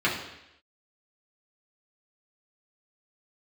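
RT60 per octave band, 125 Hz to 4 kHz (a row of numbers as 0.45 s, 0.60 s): 0.75 s, 0.80 s, 0.85 s, 0.85 s, 0.90 s, 0.90 s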